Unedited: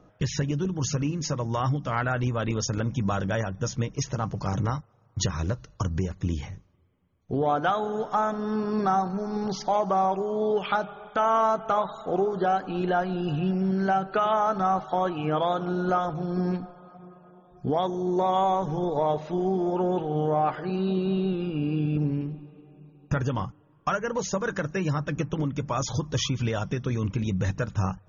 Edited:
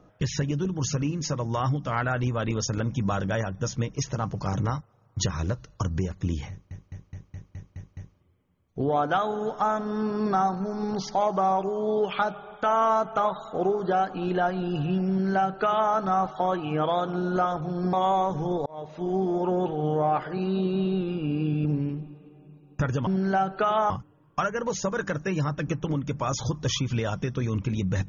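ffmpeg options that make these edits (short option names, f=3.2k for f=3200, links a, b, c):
-filter_complex "[0:a]asplit=12[a][b][c][d][e][f][g][h][i][j][k][l];[a]atrim=end=6.712[m];[b]atrim=start=6.498:end=6.712[n];[c]atrim=start=6.498:end=6.712[o];[d]atrim=start=6.498:end=6.712[p];[e]atrim=start=6.498:end=6.712[q];[f]atrim=start=6.498:end=6.712[r];[g]atrim=start=6.498:end=6.712[s];[h]atrim=start=6.498:end=16.462[t];[i]atrim=start=18.248:end=18.98,asetpts=PTS-STARTPTS,afade=t=out:st=0.728:d=0.004:c=hsin[u];[j]atrim=start=18.98:end=23.392,asetpts=PTS-STARTPTS,afade=t=in:d=0.51[v];[k]atrim=start=13.618:end=14.452[w];[l]atrim=start=23.388[x];[m][n]acrossfade=d=0.004:c1=hsin:c2=hsin[y];[y][o]acrossfade=d=0.004:c1=hsin:c2=hsin[z];[z][p]acrossfade=d=0.004:c1=hsin:c2=hsin[aa];[aa][q]acrossfade=d=0.004:c1=hsin:c2=hsin[ab];[ab][r]acrossfade=d=0.004:c1=hsin:c2=hsin[ac];[ac][s]acrossfade=d=0.004:c1=hsin:c2=hsin[ad];[ad][t]acrossfade=d=0.004:c1=hsin:c2=hsin[ae];[u][v]concat=n=2:v=0:a=1[af];[ae][af]acrossfade=d=0.004:c1=hsin:c2=hsin[ag];[ag][w]acrossfade=d=0.004:c1=hsin:c2=hsin[ah];[ah][x]acrossfade=d=0.004:c1=hsin:c2=hsin"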